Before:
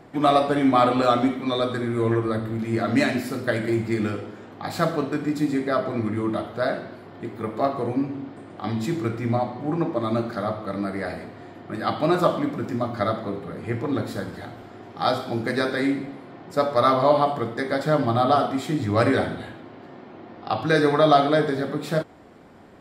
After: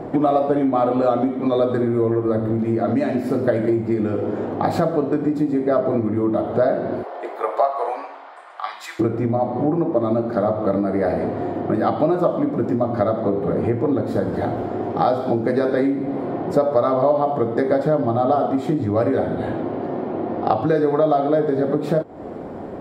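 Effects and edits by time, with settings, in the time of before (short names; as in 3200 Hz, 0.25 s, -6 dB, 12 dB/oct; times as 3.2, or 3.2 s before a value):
7.02–8.99 HPF 520 Hz -> 1300 Hz 24 dB/oct
whole clip: tilt shelf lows +6.5 dB, about 1200 Hz; compressor 10:1, threshold -28 dBFS; bell 550 Hz +8 dB 2 oct; gain +7 dB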